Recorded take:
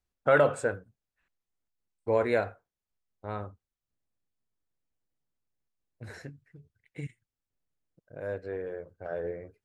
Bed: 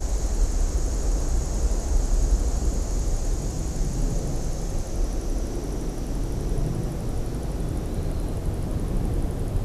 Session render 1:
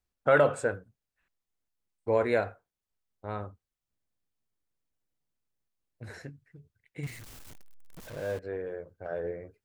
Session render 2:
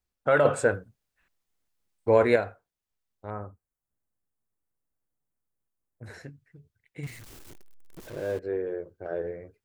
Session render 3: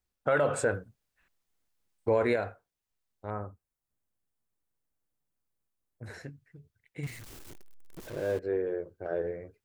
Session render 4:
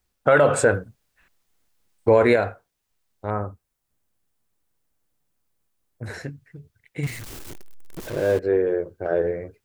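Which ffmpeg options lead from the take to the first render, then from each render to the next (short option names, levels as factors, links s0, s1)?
-filter_complex "[0:a]asettb=1/sr,asplit=3[s0][s1][s2];[s0]atrim=end=7.034[s3];[s1]atrim=start=7.03:end=8.39,asetpts=PTS-STARTPTS,afade=t=in:d=0.004:c=qsin,afade=t=out:st=1.356:d=0.004:c=qsin,aeval=exprs='val(0)+0.5*0.0106*sgn(val(0))':c=same[s4];[s2]atrim=start=8.386[s5];[s3][s4]acrossfade=d=0.004:c1=hsin:c2=qsin[s6];[s6][s5]acrossfade=d=0.004:c1=qsin:c2=hsin"
-filter_complex "[0:a]asettb=1/sr,asplit=3[s0][s1][s2];[s0]atrim=end=0.454[s3];[s1]atrim=start=0.45:end=2.36,asetpts=PTS-STARTPTS,afade=t=in:d=0.004:c=qsin,afade=t=out:st=1.906:d=0.004:c=qsin,acontrast=55[s4];[s2]atrim=start=2.356[s5];[s3][s4]acrossfade=d=0.004:c1=hsin:c2=qsin[s6];[s6][s5]acrossfade=d=0.004:c1=qsin:c2=hsin,asettb=1/sr,asplit=3[s7][s8][s9];[s7]atrim=end=3.304[s10];[s8]atrim=start=3.3:end=6.06,asetpts=PTS-STARTPTS,afade=t=in:d=0.004:c=qsin,afade=t=out:st=2.756:d=0.004:c=qsin,asuperstop=centerf=3700:order=4:qfactor=0.65[s11];[s9]atrim=start=6.056[s12];[s10][s11]acrossfade=d=0.004:c1=hsin:c2=qsin[s13];[s13][s12]acrossfade=d=0.004:c1=qsin:c2=hsin,asettb=1/sr,asplit=3[s14][s15][s16];[s14]atrim=end=7.304[s17];[s15]atrim=start=7.3:end=9.22,asetpts=PTS-STARTPTS,afade=t=in:d=0.004:c=qsin,afade=t=out:st=1.916:d=0.004:c=qsin,equalizer=f=360:w=2.5:g=10.5[s18];[s16]atrim=start=9.216[s19];[s17][s18]acrossfade=d=0.004:c1=hsin:c2=qsin[s20];[s20][s19]acrossfade=d=0.004:c1=qsin:c2=hsin"
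-af "alimiter=limit=0.15:level=0:latency=1:release=106"
-af "volume=3.16"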